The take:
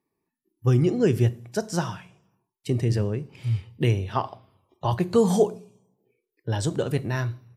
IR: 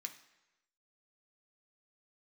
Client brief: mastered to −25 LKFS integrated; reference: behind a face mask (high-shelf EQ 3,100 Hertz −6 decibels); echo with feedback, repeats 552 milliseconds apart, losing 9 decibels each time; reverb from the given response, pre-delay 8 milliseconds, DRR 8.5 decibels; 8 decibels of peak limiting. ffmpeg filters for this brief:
-filter_complex "[0:a]alimiter=limit=-16.5dB:level=0:latency=1,aecho=1:1:552|1104|1656|2208:0.355|0.124|0.0435|0.0152,asplit=2[link_01][link_02];[1:a]atrim=start_sample=2205,adelay=8[link_03];[link_02][link_03]afir=irnorm=-1:irlink=0,volume=-5dB[link_04];[link_01][link_04]amix=inputs=2:normalize=0,highshelf=frequency=3100:gain=-6,volume=4dB"

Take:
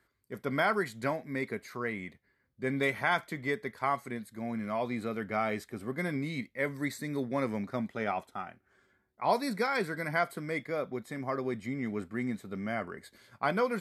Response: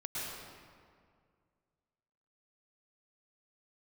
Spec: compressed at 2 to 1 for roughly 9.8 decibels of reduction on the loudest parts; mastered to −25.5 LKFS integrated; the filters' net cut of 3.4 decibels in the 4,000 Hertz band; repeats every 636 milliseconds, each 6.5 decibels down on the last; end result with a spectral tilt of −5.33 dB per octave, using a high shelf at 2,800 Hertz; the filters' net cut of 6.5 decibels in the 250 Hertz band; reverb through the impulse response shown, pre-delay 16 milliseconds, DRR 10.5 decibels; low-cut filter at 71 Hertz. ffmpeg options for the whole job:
-filter_complex "[0:a]highpass=71,equalizer=frequency=250:width_type=o:gain=-8,highshelf=frequency=2800:gain=4,equalizer=frequency=4000:width_type=o:gain=-7.5,acompressor=threshold=-41dB:ratio=2,aecho=1:1:636|1272|1908|2544|3180|3816:0.473|0.222|0.105|0.0491|0.0231|0.0109,asplit=2[link_01][link_02];[1:a]atrim=start_sample=2205,adelay=16[link_03];[link_02][link_03]afir=irnorm=-1:irlink=0,volume=-13.5dB[link_04];[link_01][link_04]amix=inputs=2:normalize=0,volume=15dB"

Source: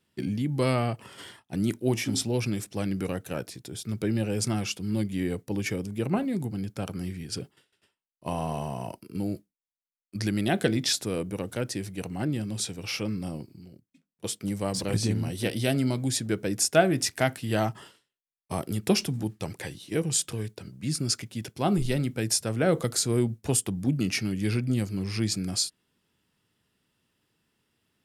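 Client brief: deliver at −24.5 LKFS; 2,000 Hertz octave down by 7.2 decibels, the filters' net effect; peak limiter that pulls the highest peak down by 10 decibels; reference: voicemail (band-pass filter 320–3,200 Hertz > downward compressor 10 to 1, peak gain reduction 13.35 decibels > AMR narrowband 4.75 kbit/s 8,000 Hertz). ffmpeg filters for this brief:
ffmpeg -i in.wav -af "equalizer=frequency=2000:width_type=o:gain=-9,alimiter=limit=-19.5dB:level=0:latency=1,highpass=320,lowpass=3200,acompressor=threshold=-38dB:ratio=10,volume=21dB" -ar 8000 -c:a libopencore_amrnb -b:a 4750 out.amr

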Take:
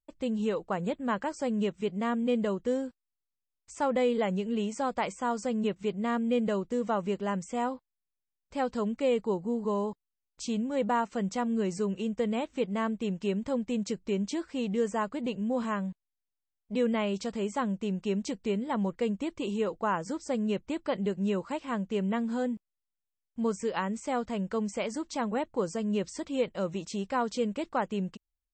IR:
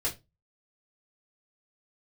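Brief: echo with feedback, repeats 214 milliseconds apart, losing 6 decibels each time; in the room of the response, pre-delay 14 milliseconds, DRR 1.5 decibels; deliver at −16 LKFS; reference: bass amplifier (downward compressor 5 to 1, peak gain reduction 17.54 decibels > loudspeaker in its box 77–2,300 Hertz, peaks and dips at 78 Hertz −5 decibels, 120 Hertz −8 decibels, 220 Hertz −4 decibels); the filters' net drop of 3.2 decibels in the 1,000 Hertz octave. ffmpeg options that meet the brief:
-filter_complex "[0:a]equalizer=frequency=1000:width_type=o:gain=-4,aecho=1:1:214|428|642|856|1070|1284:0.501|0.251|0.125|0.0626|0.0313|0.0157,asplit=2[link_01][link_02];[1:a]atrim=start_sample=2205,adelay=14[link_03];[link_02][link_03]afir=irnorm=-1:irlink=0,volume=-7dB[link_04];[link_01][link_04]amix=inputs=2:normalize=0,acompressor=threshold=-38dB:ratio=5,highpass=frequency=77:width=0.5412,highpass=frequency=77:width=1.3066,equalizer=frequency=78:width_type=q:width=4:gain=-5,equalizer=frequency=120:width_type=q:width=4:gain=-8,equalizer=frequency=220:width_type=q:width=4:gain=-4,lowpass=frequency=2300:width=0.5412,lowpass=frequency=2300:width=1.3066,volume=26dB"

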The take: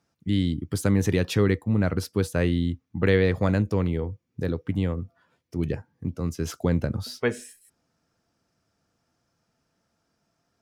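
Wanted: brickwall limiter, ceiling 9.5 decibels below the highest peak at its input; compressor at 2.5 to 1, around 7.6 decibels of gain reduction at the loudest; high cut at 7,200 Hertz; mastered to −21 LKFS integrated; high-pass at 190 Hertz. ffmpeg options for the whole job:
ffmpeg -i in.wav -af "highpass=190,lowpass=7200,acompressor=threshold=-30dB:ratio=2.5,volume=16dB,alimiter=limit=-9dB:level=0:latency=1" out.wav

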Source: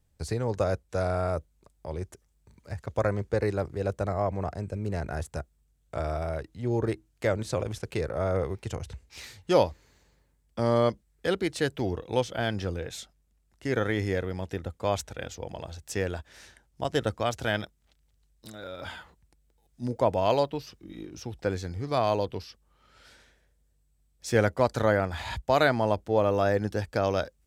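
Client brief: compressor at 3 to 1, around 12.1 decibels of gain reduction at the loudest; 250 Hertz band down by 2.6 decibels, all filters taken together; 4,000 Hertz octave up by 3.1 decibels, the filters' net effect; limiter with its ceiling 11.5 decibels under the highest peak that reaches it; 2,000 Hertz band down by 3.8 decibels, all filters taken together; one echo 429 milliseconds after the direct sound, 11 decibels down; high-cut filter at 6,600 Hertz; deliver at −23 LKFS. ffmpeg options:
ffmpeg -i in.wav -af "lowpass=6600,equalizer=frequency=250:width_type=o:gain=-3.5,equalizer=frequency=2000:width_type=o:gain=-6.5,equalizer=frequency=4000:width_type=o:gain=6.5,acompressor=threshold=-35dB:ratio=3,alimiter=level_in=7.5dB:limit=-24dB:level=0:latency=1,volume=-7.5dB,aecho=1:1:429:0.282,volume=20.5dB" out.wav

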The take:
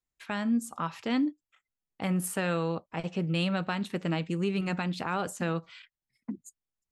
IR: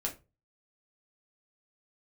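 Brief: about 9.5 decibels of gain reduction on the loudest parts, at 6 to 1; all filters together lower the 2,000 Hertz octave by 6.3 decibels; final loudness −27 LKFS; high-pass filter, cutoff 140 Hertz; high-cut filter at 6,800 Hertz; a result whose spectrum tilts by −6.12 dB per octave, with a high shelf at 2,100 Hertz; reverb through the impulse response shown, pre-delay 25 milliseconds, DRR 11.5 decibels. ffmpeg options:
-filter_complex "[0:a]highpass=140,lowpass=6800,equalizer=frequency=2000:width_type=o:gain=-6.5,highshelf=frequency=2100:gain=-3.5,acompressor=threshold=-34dB:ratio=6,asplit=2[link_01][link_02];[1:a]atrim=start_sample=2205,adelay=25[link_03];[link_02][link_03]afir=irnorm=-1:irlink=0,volume=-14dB[link_04];[link_01][link_04]amix=inputs=2:normalize=0,volume=12.5dB"

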